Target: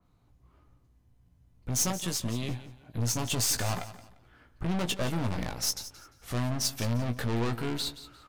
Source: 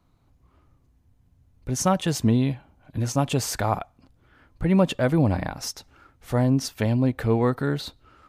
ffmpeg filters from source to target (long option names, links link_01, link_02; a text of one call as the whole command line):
ffmpeg -i in.wav -filter_complex "[0:a]asettb=1/sr,asplit=3[link_01][link_02][link_03];[link_01]atrim=end=1.904[link_04];[link_02]atrim=start=1.9:end=2.49,asetpts=PTS-STARTPTS,afade=type=in:duration=0.004:curve=qsin,afade=type=out:start_time=0.586:duration=0.004:curve=qsin,acrossover=split=410|6400[link_05][link_06][link_07];[link_05]acompressor=threshold=-31dB:ratio=4[link_08];[link_06]acompressor=threshold=-34dB:ratio=4[link_09];[link_07]acompressor=threshold=-40dB:ratio=4[link_10];[link_08][link_09][link_10]amix=inputs=3:normalize=0[link_11];[link_03]atrim=start=2.486[link_12];[link_04][link_11]acrossfade=duration=0.004:curve1=hsin:curve2=qsin[link_13];[link_13][link_12]acrossfade=duration=0.004:curve1=qsin:curve2=hsin,aeval=exprs='(tanh(28.2*val(0)+0.65)-tanh(0.65))/28.2':channel_layout=same,asplit=2[link_14][link_15];[link_15]adelay=17,volume=-7dB[link_16];[link_14][link_16]amix=inputs=2:normalize=0,aecho=1:1:174|348|522:0.188|0.0546|0.0158,adynamicequalizer=threshold=0.00224:dfrequency=2900:dqfactor=0.7:tfrequency=2900:tqfactor=0.7:attack=5:release=100:ratio=0.375:range=3.5:mode=boostabove:tftype=highshelf" out.wav